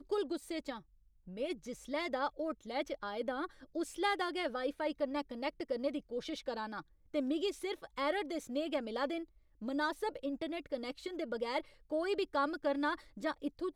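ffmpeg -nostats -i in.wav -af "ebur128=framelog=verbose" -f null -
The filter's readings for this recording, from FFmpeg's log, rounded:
Integrated loudness:
  I:         -38.0 LUFS
  Threshold: -48.1 LUFS
Loudness range:
  LRA:         2.2 LU
  Threshold: -58.1 LUFS
  LRA low:   -39.5 LUFS
  LRA high:  -37.3 LUFS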